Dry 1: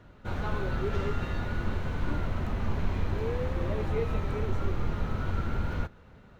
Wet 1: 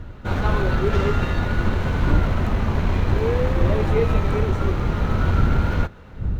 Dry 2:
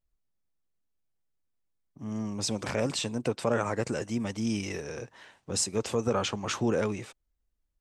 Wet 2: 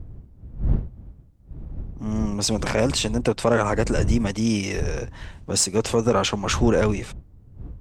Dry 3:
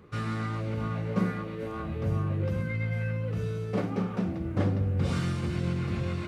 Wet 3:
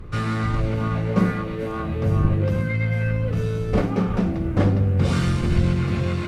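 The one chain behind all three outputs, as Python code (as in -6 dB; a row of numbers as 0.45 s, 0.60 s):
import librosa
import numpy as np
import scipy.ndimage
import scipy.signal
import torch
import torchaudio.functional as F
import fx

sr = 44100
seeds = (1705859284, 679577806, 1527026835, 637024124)

y = fx.dmg_wind(x, sr, seeds[0], corner_hz=82.0, level_db=-37.0)
y = fx.cheby_harmonics(y, sr, harmonics=(8,), levels_db=(-34,), full_scale_db=-11.5)
y = y * 10.0 ** (-6 / 20.0) / np.max(np.abs(y))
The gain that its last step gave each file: +10.0 dB, +8.0 dB, +8.0 dB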